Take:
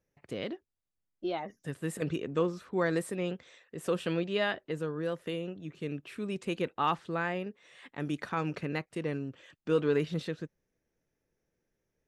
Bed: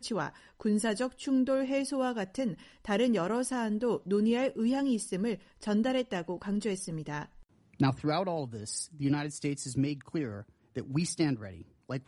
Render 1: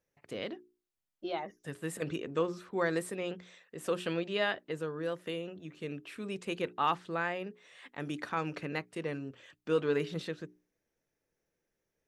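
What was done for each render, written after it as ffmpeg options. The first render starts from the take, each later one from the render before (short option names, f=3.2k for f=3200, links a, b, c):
-af "lowshelf=f=260:g=-6.5,bandreject=f=60:t=h:w=6,bandreject=f=120:t=h:w=6,bandreject=f=180:t=h:w=6,bandreject=f=240:t=h:w=6,bandreject=f=300:t=h:w=6,bandreject=f=360:t=h:w=6,bandreject=f=420:t=h:w=6"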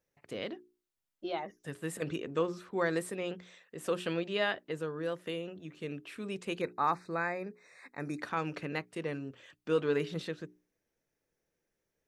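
-filter_complex "[0:a]asettb=1/sr,asplit=3[a][b][c];[a]atrim=end=6.614[d];[b]atrim=start=6.61:end=8.21,asetpts=PTS-STARTPTS,afade=t=in:d=0.004:c=qsin,afade=t=out:st=1.596:d=0.004:c=qsin,asuperstop=centerf=3100:order=12:qfactor=2.6[e];[c]atrim=start=8.206[f];[d][e]acrossfade=d=0.004:c1=hsin:c2=qsin[g];[g][f]acrossfade=d=0.004:c1=qsin:c2=hsin"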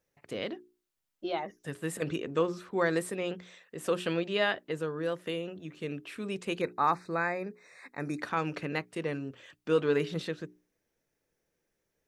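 -af "volume=3dB"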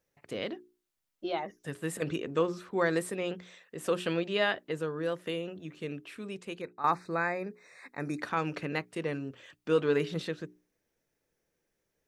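-filter_complex "[0:a]asplit=2[a][b];[a]atrim=end=6.84,asetpts=PTS-STARTPTS,afade=t=out:st=5.69:d=1.15:silence=0.251189[c];[b]atrim=start=6.84,asetpts=PTS-STARTPTS,afade=t=in:d=0.004:c=hsin:silence=0.251189[d];[c][d]concat=n=2:v=0:a=1"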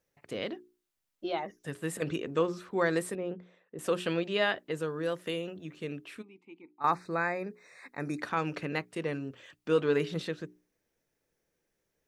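-filter_complex "[0:a]asettb=1/sr,asplit=3[a][b][c];[a]atrim=end=3.154[d];[b]atrim=start=3.15:end=3.79,asetpts=PTS-STARTPTS,afade=t=in:d=0.004:c=qsin,afade=t=out:st=0.636:d=0.004:c=qsin,bandpass=f=260:t=q:w=0.51[e];[c]atrim=start=3.786[f];[d][e]acrossfade=d=0.004:c1=hsin:c2=qsin[g];[g][f]acrossfade=d=0.004:c1=qsin:c2=hsin,asettb=1/sr,asplit=3[h][i][j];[h]atrim=end=4.744[k];[i]atrim=start=4.74:end=5.51,asetpts=PTS-STARTPTS,afade=t=in:d=0.004:c=qsin,afade=t=out:st=0.766:d=0.004:c=qsin,highshelf=f=4.5k:g=4.5[l];[j]atrim=start=5.506[m];[k][l]acrossfade=d=0.004:c1=hsin:c2=qsin[n];[n][m]acrossfade=d=0.004:c1=qsin:c2=hsin,asplit=3[o][p][q];[o]afade=t=out:st=6.21:d=0.02[r];[p]asplit=3[s][t][u];[s]bandpass=f=300:t=q:w=8,volume=0dB[v];[t]bandpass=f=870:t=q:w=8,volume=-6dB[w];[u]bandpass=f=2.24k:t=q:w=8,volume=-9dB[x];[v][w][x]amix=inputs=3:normalize=0,afade=t=in:st=6.21:d=0.02,afade=t=out:st=6.8:d=0.02[y];[q]afade=t=in:st=6.8:d=0.02[z];[r][y][z]amix=inputs=3:normalize=0"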